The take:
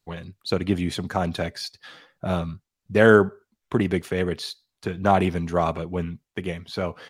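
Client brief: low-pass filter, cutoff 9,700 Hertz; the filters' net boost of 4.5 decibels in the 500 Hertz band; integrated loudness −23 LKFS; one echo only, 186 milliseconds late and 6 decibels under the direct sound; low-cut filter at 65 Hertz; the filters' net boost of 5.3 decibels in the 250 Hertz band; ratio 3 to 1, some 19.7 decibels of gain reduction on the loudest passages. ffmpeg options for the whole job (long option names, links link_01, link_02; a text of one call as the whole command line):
ffmpeg -i in.wav -af "highpass=65,lowpass=9700,equalizer=frequency=250:width_type=o:gain=6.5,equalizer=frequency=500:width_type=o:gain=3.5,acompressor=threshold=-33dB:ratio=3,aecho=1:1:186:0.501,volume=11dB" out.wav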